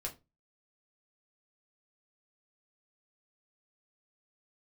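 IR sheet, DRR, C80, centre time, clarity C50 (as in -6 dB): -1.0 dB, 22.5 dB, 12 ms, 16.0 dB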